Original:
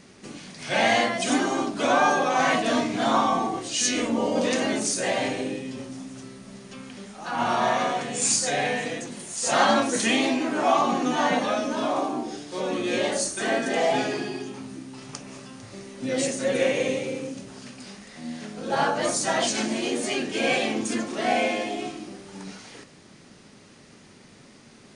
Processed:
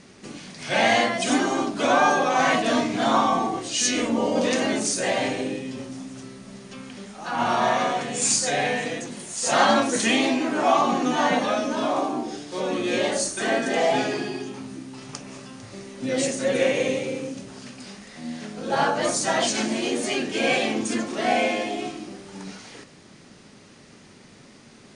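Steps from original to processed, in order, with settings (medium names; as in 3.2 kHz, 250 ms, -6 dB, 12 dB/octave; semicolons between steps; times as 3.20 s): low-pass 11 kHz 12 dB/octave; trim +1.5 dB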